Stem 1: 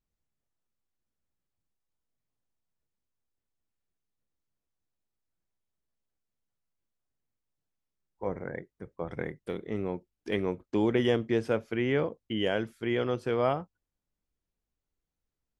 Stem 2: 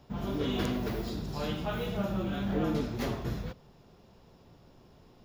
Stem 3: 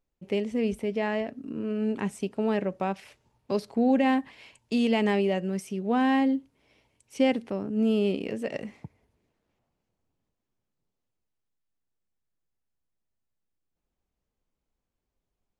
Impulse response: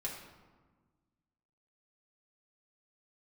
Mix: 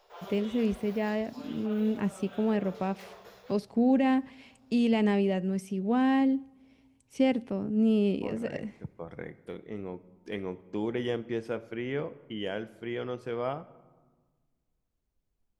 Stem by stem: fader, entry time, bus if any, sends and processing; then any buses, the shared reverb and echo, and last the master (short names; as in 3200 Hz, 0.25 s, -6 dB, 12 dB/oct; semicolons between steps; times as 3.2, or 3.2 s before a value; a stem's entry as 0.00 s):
-7.0 dB, 0.00 s, send -12 dB, dry
0.0 dB, 0.00 s, no send, steep high-pass 420 Hz 48 dB/oct; limiter -31 dBFS, peak gain reduction 8 dB; auto duck -8 dB, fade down 0.70 s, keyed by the third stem
-5.0 dB, 0.00 s, send -22.5 dB, low shelf 240 Hz +9 dB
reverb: on, RT60 1.4 s, pre-delay 4 ms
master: dry